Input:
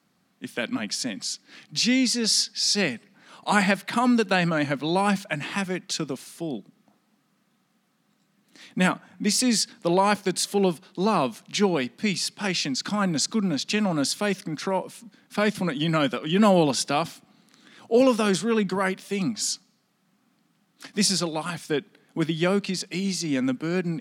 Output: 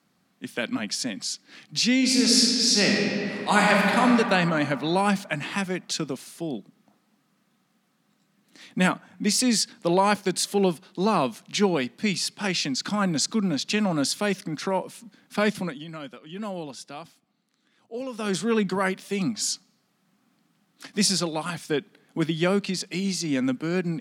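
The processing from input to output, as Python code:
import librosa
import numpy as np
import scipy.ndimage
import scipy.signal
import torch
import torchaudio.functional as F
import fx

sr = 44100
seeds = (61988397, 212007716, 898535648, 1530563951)

y = fx.reverb_throw(x, sr, start_s=1.97, length_s=2.02, rt60_s=2.9, drr_db=-2.0)
y = fx.edit(y, sr, fx.fade_down_up(start_s=15.51, length_s=2.94, db=-15.0, fade_s=0.33), tone=tone)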